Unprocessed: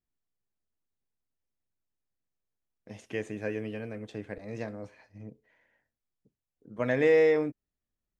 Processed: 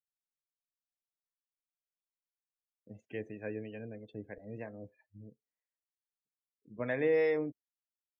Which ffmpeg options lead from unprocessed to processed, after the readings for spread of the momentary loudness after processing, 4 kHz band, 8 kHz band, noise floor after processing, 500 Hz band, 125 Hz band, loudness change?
25 LU, −9.0 dB, can't be measured, below −85 dBFS, −6.5 dB, −6.5 dB, −6.5 dB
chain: -filter_complex "[0:a]acrossover=split=510[link_01][link_02];[link_01]aeval=exprs='val(0)*(1-0.5/2+0.5/2*cos(2*PI*3.1*n/s))':channel_layout=same[link_03];[link_02]aeval=exprs='val(0)*(1-0.5/2-0.5/2*cos(2*PI*3.1*n/s))':channel_layout=same[link_04];[link_03][link_04]amix=inputs=2:normalize=0,afftdn=noise_reduction=28:noise_floor=-48,volume=-4dB"

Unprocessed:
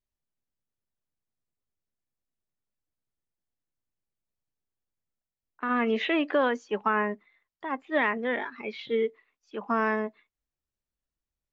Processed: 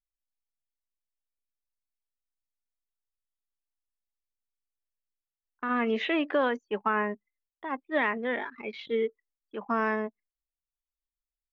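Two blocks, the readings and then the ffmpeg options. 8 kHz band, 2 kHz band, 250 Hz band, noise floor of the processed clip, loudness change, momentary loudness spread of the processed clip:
can't be measured, −1.5 dB, −1.5 dB, below −85 dBFS, −1.5 dB, 12 LU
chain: -af "anlmdn=0.0398,volume=-1.5dB"

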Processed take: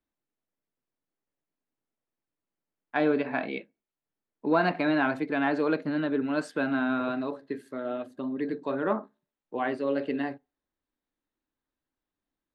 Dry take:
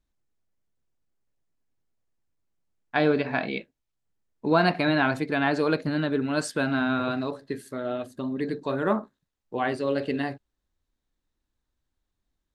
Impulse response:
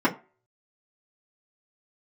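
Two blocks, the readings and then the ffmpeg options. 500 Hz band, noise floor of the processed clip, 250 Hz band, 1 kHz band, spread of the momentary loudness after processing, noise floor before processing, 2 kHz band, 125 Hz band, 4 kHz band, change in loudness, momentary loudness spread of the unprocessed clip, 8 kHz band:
−2.5 dB, below −85 dBFS, −1.5 dB, −2.5 dB, 10 LU, −83 dBFS, −3.5 dB, −8.5 dB, −8.0 dB, −2.5 dB, 10 LU, below −10 dB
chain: -filter_complex "[0:a]acontrast=33,acrossover=split=160 3300:gain=0.2 1 0.251[link_01][link_02][link_03];[link_01][link_02][link_03]amix=inputs=3:normalize=0,asplit=2[link_04][link_05];[1:a]atrim=start_sample=2205[link_06];[link_05][link_06]afir=irnorm=-1:irlink=0,volume=-34dB[link_07];[link_04][link_07]amix=inputs=2:normalize=0,volume=-8dB"

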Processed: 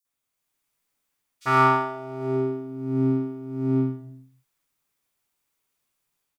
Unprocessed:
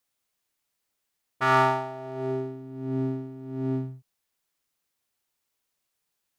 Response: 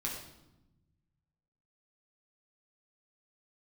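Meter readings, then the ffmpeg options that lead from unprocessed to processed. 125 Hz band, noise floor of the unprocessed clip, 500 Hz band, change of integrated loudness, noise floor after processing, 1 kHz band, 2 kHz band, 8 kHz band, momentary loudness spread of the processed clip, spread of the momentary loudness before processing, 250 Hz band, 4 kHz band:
+4.0 dB, −80 dBFS, +2.5 dB, +3.5 dB, −82 dBFS, +3.0 dB, +1.5 dB, can't be measured, 13 LU, 15 LU, +6.5 dB, −1.5 dB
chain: -filter_complex "[0:a]dynaudnorm=framelen=270:gausssize=3:maxgain=5.5dB,acrossover=split=4600[link_01][link_02];[link_01]adelay=50[link_03];[link_03][link_02]amix=inputs=2:normalize=0,asplit=2[link_04][link_05];[1:a]atrim=start_sample=2205,afade=type=out:start_time=0.43:duration=0.01,atrim=end_sample=19404[link_06];[link_05][link_06]afir=irnorm=-1:irlink=0,volume=-7dB[link_07];[link_04][link_07]amix=inputs=2:normalize=0,volume=-5dB"

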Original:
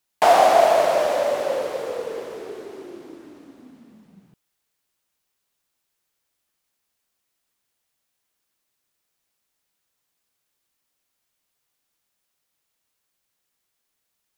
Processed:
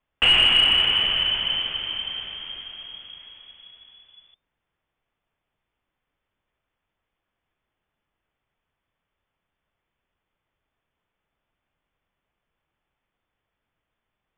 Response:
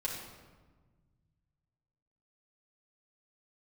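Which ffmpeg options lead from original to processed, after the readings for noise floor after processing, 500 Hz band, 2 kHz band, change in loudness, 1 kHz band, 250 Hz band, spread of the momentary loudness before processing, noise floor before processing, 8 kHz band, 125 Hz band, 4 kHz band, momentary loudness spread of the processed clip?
−83 dBFS, −23.5 dB, +5.0 dB, +0.5 dB, −17.0 dB, −7.0 dB, 21 LU, −77 dBFS, below −10 dB, +5.5 dB, +18.5 dB, 21 LU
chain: -af "lowpass=frequency=3100:width_type=q:width=0.5098,lowpass=frequency=3100:width_type=q:width=0.6013,lowpass=frequency=3100:width_type=q:width=0.9,lowpass=frequency=3100:width_type=q:width=2.563,afreqshift=-3600,acontrast=86,aemphasis=mode=reproduction:type=riaa,volume=-3.5dB"

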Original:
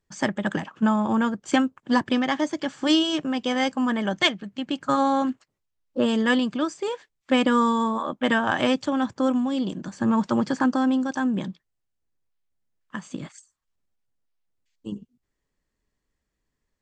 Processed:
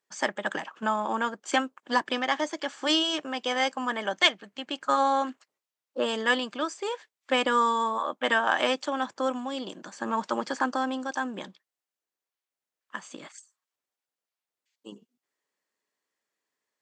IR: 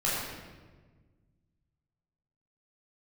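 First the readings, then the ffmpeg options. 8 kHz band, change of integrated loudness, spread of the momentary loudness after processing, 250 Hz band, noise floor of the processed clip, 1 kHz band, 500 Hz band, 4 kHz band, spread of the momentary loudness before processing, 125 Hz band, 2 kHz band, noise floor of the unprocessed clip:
0.0 dB, −4.0 dB, 16 LU, −11.5 dB, below −85 dBFS, −0.5 dB, −2.5 dB, 0.0 dB, 16 LU, below −15 dB, 0.0 dB, −81 dBFS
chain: -af "highpass=490"

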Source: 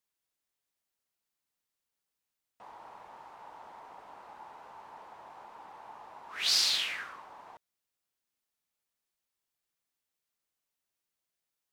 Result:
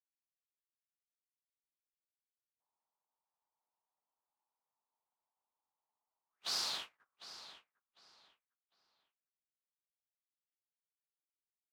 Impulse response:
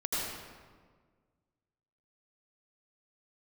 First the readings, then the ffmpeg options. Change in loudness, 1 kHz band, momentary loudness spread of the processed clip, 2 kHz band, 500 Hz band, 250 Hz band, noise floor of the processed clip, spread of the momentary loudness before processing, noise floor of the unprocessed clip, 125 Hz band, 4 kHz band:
−11.0 dB, −11.0 dB, 19 LU, −14.0 dB, −9.0 dB, −7.5 dB, below −85 dBFS, 20 LU, below −85 dBFS, can't be measured, −11.0 dB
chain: -filter_complex "[0:a]highshelf=frequency=1600:width_type=q:width=1.5:gain=-7.5,agate=range=-45dB:threshold=-38dB:ratio=16:detection=peak,asplit=2[link_01][link_02];[link_02]adelay=752,lowpass=frequency=4700:poles=1,volume=-12.5dB,asplit=2[link_03][link_04];[link_04]adelay=752,lowpass=frequency=4700:poles=1,volume=0.26,asplit=2[link_05][link_06];[link_06]adelay=752,lowpass=frequency=4700:poles=1,volume=0.26[link_07];[link_01][link_03][link_05][link_07]amix=inputs=4:normalize=0,volume=-2.5dB"

